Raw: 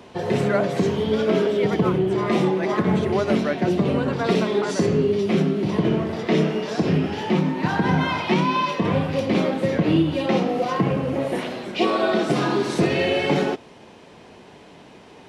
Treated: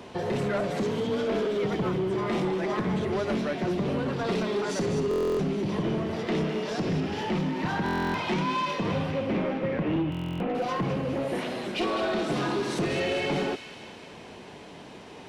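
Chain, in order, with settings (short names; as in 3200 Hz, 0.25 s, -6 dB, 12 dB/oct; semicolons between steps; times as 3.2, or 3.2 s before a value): 9.11–10.55 steep low-pass 2800 Hz; in parallel at +2.5 dB: compressor, threshold -31 dBFS, peak gain reduction 15.5 dB; on the sum: soft clip -15.5 dBFS, distortion -13 dB; 0.7–1.45 frequency shift +21 Hz; on a send: thin delay 0.206 s, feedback 61%, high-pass 2100 Hz, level -7.5 dB; on the sum: stuck buffer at 5.09/7.84/10.1, samples 1024, times 12; gain -6.5 dB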